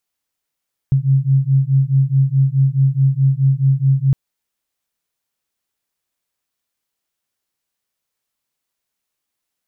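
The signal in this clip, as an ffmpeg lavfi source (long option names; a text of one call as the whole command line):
ffmpeg -f lavfi -i "aevalsrc='0.188*(sin(2*PI*133*t)+sin(2*PI*137.7*t))':duration=3.21:sample_rate=44100" out.wav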